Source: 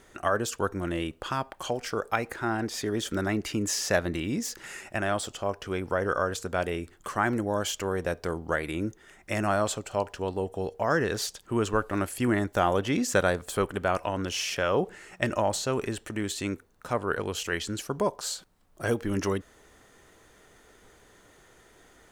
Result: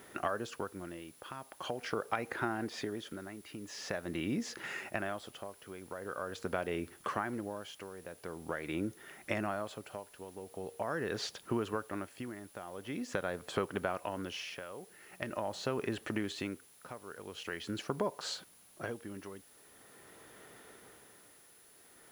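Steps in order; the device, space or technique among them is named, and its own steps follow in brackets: medium wave at night (BPF 120–3700 Hz; compressor, threshold -32 dBFS, peak gain reduction 13.5 dB; tremolo 0.44 Hz, depth 78%; whine 10000 Hz -64 dBFS; white noise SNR 24 dB); gain +2 dB

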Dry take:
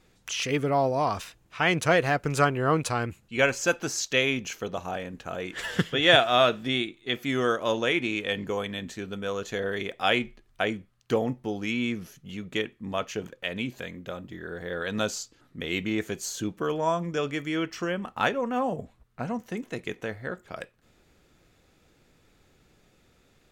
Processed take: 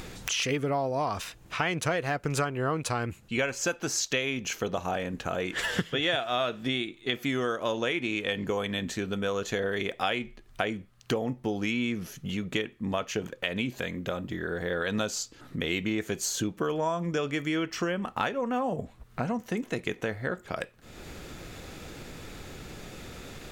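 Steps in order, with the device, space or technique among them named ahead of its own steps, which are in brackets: upward and downward compression (upward compressor, threshold -33 dBFS; compressor 6:1, threshold -30 dBFS, peak gain reduction 15.5 dB); gain +4.5 dB

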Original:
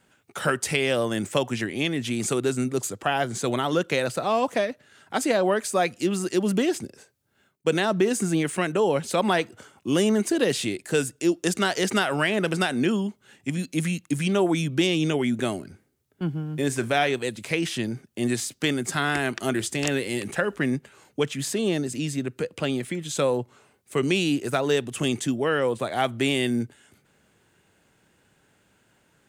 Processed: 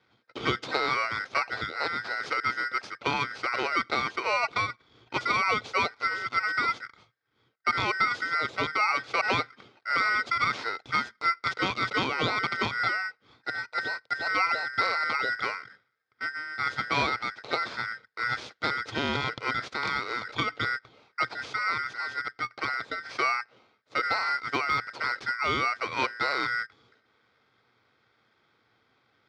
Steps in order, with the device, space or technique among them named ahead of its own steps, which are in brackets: ring modulator pedal into a guitar cabinet (polarity switched at an audio rate 1700 Hz; speaker cabinet 110–3800 Hz, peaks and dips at 120 Hz +7 dB, 170 Hz -8 dB, 460 Hz +5 dB, 1000 Hz -3 dB, 1800 Hz -9 dB, 2900 Hz -9 dB); 23.98–24.9 de-esser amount 75%

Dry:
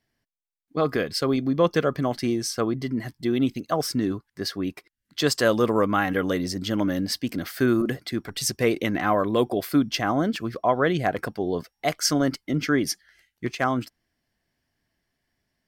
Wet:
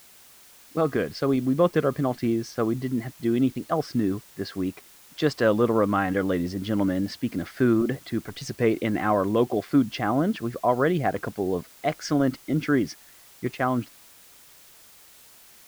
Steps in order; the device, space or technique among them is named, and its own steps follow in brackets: cassette deck with a dirty head (tape spacing loss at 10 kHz 23 dB; wow and flutter; white noise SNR 26 dB); gain +1 dB

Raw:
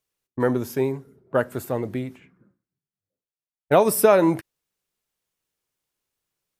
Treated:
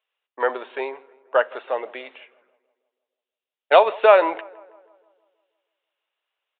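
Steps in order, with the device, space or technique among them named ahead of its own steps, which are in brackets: 2.04–3.79 tone controls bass +2 dB, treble +13 dB; darkening echo 0.162 s, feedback 55%, low-pass 2500 Hz, level -23 dB; musical greeting card (downsampling 8000 Hz; HPF 550 Hz 24 dB/oct; bell 2800 Hz +5.5 dB 0.21 oct); gain +5.5 dB

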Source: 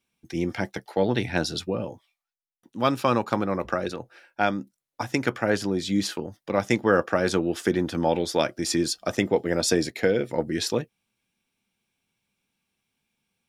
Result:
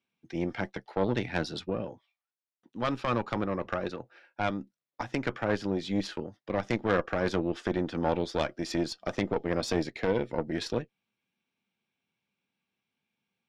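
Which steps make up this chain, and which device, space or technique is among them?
valve radio (BPF 120–4000 Hz; tube stage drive 16 dB, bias 0.75; core saturation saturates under 270 Hz)

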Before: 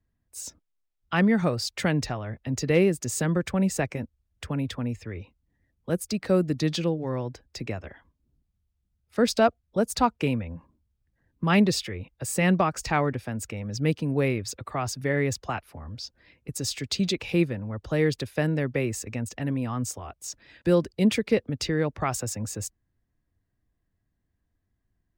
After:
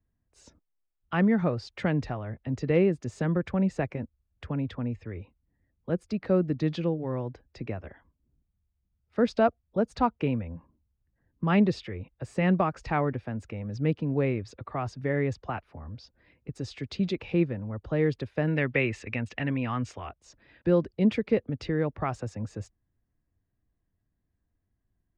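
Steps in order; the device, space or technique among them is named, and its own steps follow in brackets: phone in a pocket (LPF 3900 Hz 12 dB/oct; high shelf 2300 Hz -9 dB); 18.47–20.09 bell 2500 Hz +14.5 dB 1.8 oct; gain -1.5 dB

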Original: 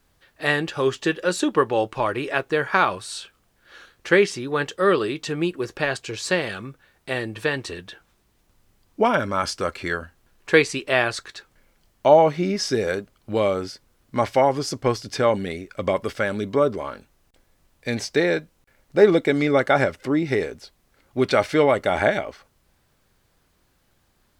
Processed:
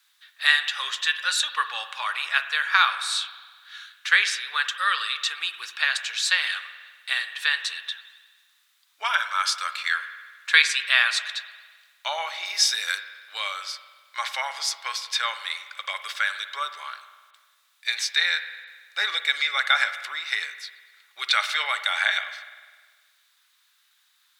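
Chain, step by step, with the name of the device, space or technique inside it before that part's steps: 12.45–12.98 high shelf 7400 Hz +9.5 dB; headphones lying on a table (HPF 1300 Hz 24 dB/oct; bell 3700 Hz +10 dB 0.25 oct); spring tank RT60 1.5 s, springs 49 ms, chirp 75 ms, DRR 10 dB; gain +3.5 dB

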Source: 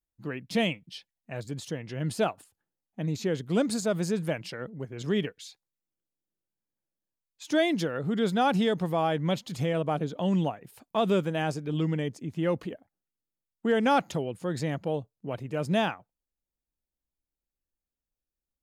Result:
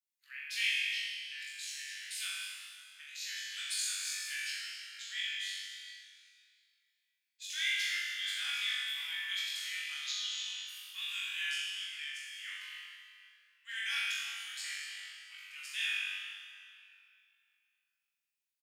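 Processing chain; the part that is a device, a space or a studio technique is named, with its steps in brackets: steep high-pass 1900 Hz 36 dB/oct; 9.92–10.41 band shelf 4800 Hz +15 dB 1.2 oct; doubler 38 ms -12 dB; tunnel (flutter echo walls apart 3.6 m, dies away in 0.75 s; reverb RT60 2.8 s, pre-delay 35 ms, DRR -1.5 dB); gain -4 dB

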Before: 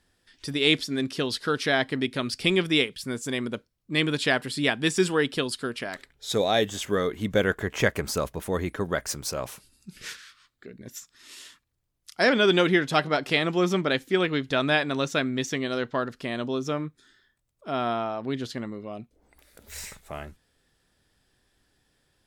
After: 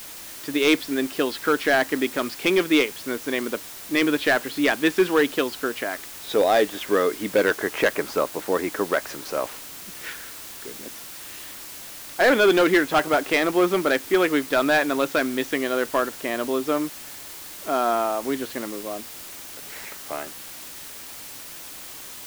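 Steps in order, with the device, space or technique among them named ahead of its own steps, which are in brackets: aircraft radio (BPF 360–2400 Hz; hard clip -19 dBFS, distortion -13 dB; white noise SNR 14 dB); bell 300 Hz +5.5 dB 0.29 oct; gain +6.5 dB

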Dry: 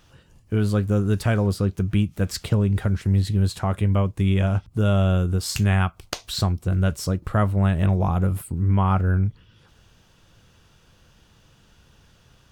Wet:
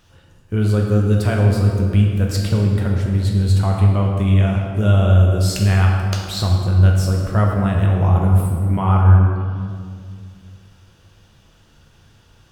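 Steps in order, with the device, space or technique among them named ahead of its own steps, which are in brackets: stairwell (reverb RT60 2.1 s, pre-delay 5 ms, DRR -0.5 dB)

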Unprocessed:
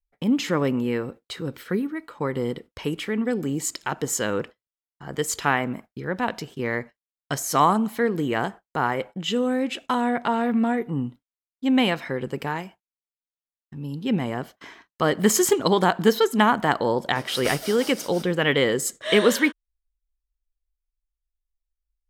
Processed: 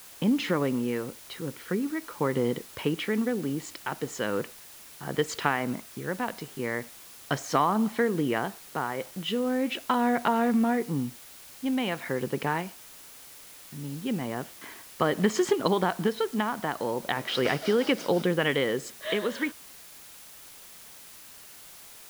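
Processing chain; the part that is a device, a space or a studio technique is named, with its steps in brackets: medium wave at night (BPF 110–3900 Hz; compressor, threshold -21 dBFS, peak gain reduction 9.5 dB; tremolo 0.39 Hz, depth 48%; whine 10000 Hz -60 dBFS; white noise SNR 19 dB); gain +1.5 dB

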